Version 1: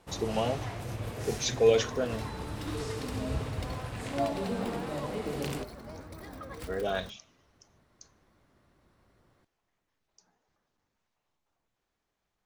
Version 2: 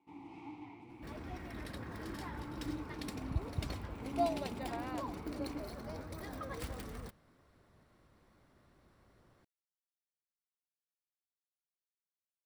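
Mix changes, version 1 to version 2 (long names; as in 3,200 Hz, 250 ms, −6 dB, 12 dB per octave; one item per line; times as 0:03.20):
speech: muted
first sound: add formant filter u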